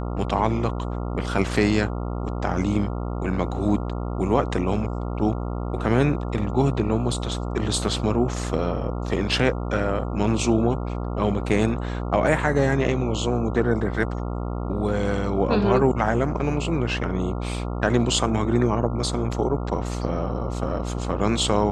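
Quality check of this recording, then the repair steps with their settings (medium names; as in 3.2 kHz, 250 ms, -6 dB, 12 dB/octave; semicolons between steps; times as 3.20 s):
buzz 60 Hz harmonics 23 -28 dBFS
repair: de-hum 60 Hz, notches 23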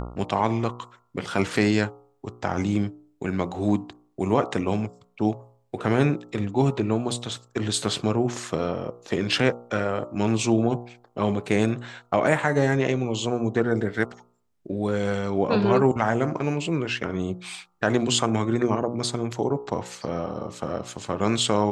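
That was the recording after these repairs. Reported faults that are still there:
nothing left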